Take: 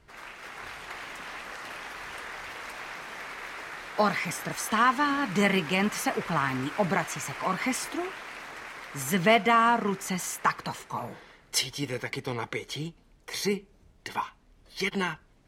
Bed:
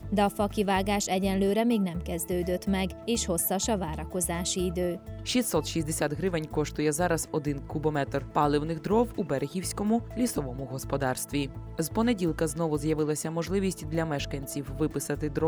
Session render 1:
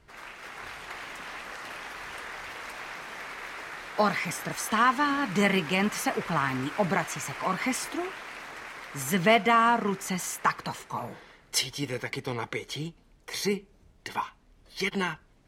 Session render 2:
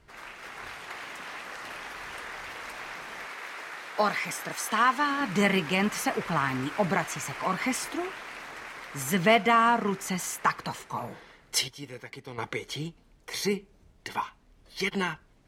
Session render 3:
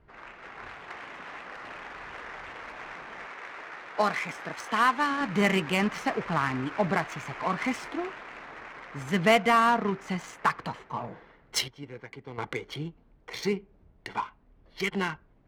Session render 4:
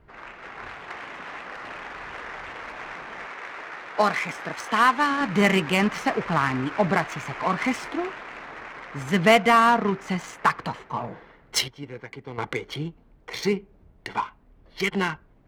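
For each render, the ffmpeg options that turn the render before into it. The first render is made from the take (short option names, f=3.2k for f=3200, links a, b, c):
-af anull
-filter_complex "[0:a]asettb=1/sr,asplit=3[a][b][c];[a]atrim=end=0.744[d];[b]atrim=start=0.74:end=1.56,asetpts=PTS-STARTPTS,afade=t=in:d=0.004:c=qsin,afade=t=out:st=0.816:d=0.004:c=qsin,highpass=f=110:p=1[e];[c]atrim=start=1.556[f];[d][e]acrossfade=d=0.004:c1=hsin:c2=qsin[g];[g][f]acrossfade=d=0.004:c1=qsin:c2=hsin,asettb=1/sr,asplit=3[h][i][j];[h]atrim=end=3.264[k];[i]atrim=start=3.26:end=5.21,asetpts=PTS-STARTPTS,afade=t=in:d=0.004:c=qsin,afade=t=out:st=1.946:d=0.004:c=qsin,highpass=f=320:p=1[l];[j]atrim=start=5.206[m];[k][l]acrossfade=d=0.004:c1=hsin:c2=qsin[n];[n][m]acrossfade=d=0.004:c1=qsin:c2=hsin,asplit=3[o][p][q];[o]atrim=end=11.682[r];[p]atrim=start=11.678:end=12.382,asetpts=PTS-STARTPTS,volume=-9dB[s];[q]atrim=start=12.378[t];[r][s]acrossfade=d=0.004:c1=hsin:c2=hsin[u];[u][t]acrossfade=d=0.004:c1=hsin:c2=hsin"
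-af "adynamicsmooth=sensitivity=4.5:basefreq=1.9k"
-af "volume=4.5dB"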